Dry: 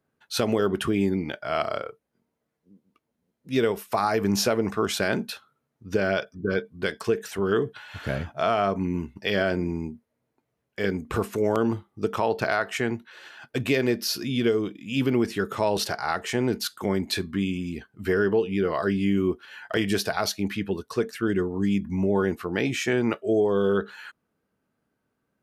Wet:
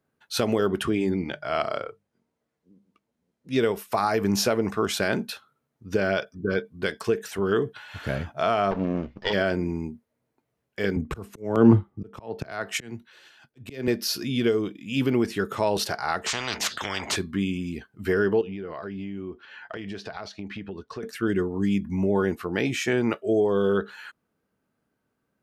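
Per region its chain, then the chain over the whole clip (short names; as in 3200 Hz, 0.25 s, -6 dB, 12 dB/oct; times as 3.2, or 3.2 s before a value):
0.83–3.61 LPF 9400 Hz + notches 50/100/150/200 Hz
8.71–9.33 minimum comb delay 0.59 ms + LPF 5200 Hz 24 dB/oct + bell 690 Hz +6.5 dB 1.7 oct
10.96–13.88 low shelf 300 Hz +9 dB + auto swell 0.361 s + three-band expander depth 70%
16.26–17.16 air absorption 190 m + spectral compressor 10:1
18.41–21.03 compressor, threshold -31 dBFS + air absorption 140 m
whole clip: dry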